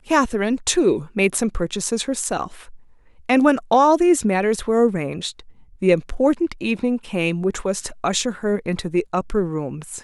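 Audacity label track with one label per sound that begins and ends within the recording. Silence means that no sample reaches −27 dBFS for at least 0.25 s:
3.290000	5.400000	sound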